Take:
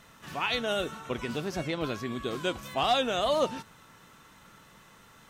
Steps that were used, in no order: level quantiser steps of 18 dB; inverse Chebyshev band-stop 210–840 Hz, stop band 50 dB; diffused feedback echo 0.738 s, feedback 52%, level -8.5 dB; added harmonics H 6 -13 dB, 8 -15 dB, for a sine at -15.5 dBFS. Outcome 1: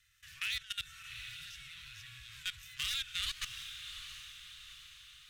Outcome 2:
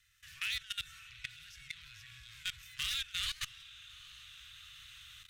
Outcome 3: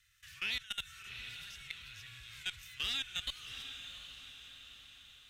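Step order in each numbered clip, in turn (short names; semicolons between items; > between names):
added harmonics > inverse Chebyshev band-stop > level quantiser > diffused feedback echo; diffused feedback echo > added harmonics > inverse Chebyshev band-stop > level quantiser; inverse Chebyshev band-stop > level quantiser > added harmonics > diffused feedback echo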